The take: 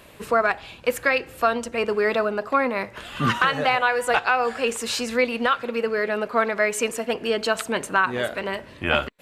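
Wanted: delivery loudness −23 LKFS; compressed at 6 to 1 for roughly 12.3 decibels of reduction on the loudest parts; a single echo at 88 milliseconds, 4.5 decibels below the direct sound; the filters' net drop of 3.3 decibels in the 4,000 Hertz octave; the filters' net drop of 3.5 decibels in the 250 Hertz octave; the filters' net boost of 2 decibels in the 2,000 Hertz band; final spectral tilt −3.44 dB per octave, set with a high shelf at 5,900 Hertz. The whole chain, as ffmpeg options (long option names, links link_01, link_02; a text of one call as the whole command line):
ffmpeg -i in.wav -af "equalizer=frequency=250:width_type=o:gain=-4,equalizer=frequency=2000:width_type=o:gain=4.5,equalizer=frequency=4000:width_type=o:gain=-6,highshelf=frequency=5900:gain=-4,acompressor=threshold=-28dB:ratio=6,aecho=1:1:88:0.596,volume=8dB" out.wav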